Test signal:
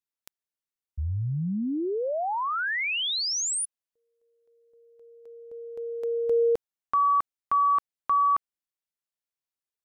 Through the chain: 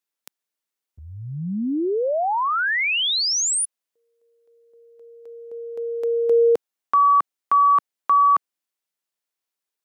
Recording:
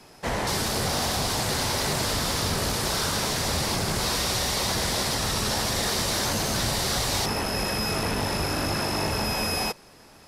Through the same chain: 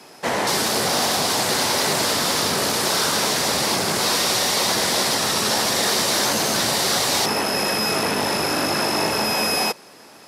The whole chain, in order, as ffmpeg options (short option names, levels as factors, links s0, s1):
-af "highpass=220,volume=2.11"